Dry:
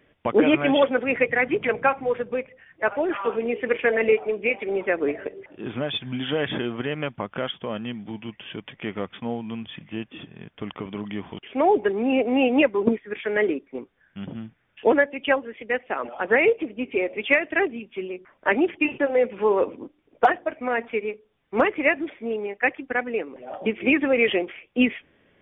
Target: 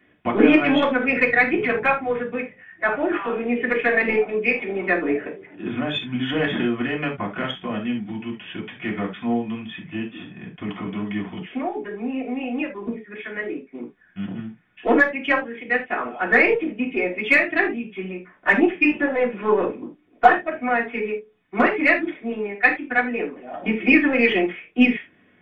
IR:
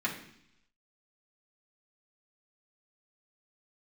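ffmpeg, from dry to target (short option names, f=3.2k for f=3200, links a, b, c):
-filter_complex "[0:a]asettb=1/sr,asplit=3[a][b][c];[a]atrim=end=11.574[d];[b]atrim=start=11.57:end=13.8,asetpts=PTS-STARTPTS,afade=t=in:d=0.004:c=qsin,afade=t=out:st=2.226:d=0.004:c=qsin,acompressor=threshold=-36dB:ratio=2[e];[c]atrim=start=13.796[f];[d][e]acrossfade=d=0.004:c1=hsin:c2=qsin[g];[g][f]acrossfade=d=0.004:c1=qsin:c2=hsin,aeval=exprs='0.501*(cos(1*acos(clip(val(0)/0.501,-1,1)))-cos(1*PI/2))+0.0398*(cos(4*acos(clip(val(0)/0.501,-1,1)))-cos(4*PI/2))+0.0112*(cos(6*acos(clip(val(0)/0.501,-1,1)))-cos(6*PI/2))':c=same[h];[1:a]atrim=start_sample=2205,atrim=end_sample=3969[i];[h][i]afir=irnorm=-1:irlink=0,volume=-3dB"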